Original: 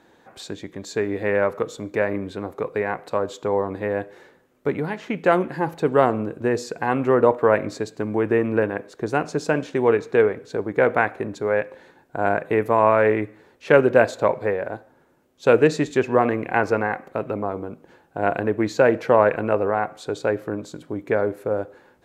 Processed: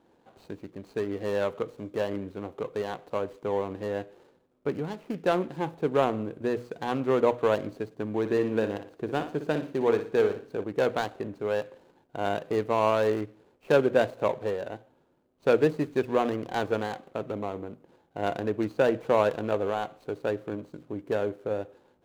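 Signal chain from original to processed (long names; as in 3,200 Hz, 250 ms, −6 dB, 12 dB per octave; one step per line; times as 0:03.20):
running median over 25 samples
mains-hum notches 60/120 Hz
0:08.19–0:10.64: flutter between parallel walls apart 10.1 metres, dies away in 0.37 s
level −6 dB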